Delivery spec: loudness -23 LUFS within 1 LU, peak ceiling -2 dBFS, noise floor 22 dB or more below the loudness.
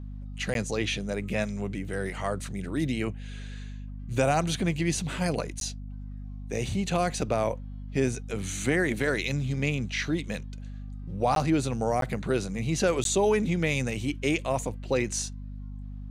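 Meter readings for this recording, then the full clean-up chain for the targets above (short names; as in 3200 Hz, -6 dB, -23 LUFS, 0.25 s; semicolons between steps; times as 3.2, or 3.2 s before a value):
dropouts 5; longest dropout 12 ms; hum 50 Hz; harmonics up to 250 Hz; hum level -36 dBFS; loudness -28.5 LUFS; peak -11.5 dBFS; loudness target -23.0 LUFS
-> interpolate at 0.54/5.6/11.35/12.01/13.04, 12 ms; de-hum 50 Hz, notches 5; gain +5.5 dB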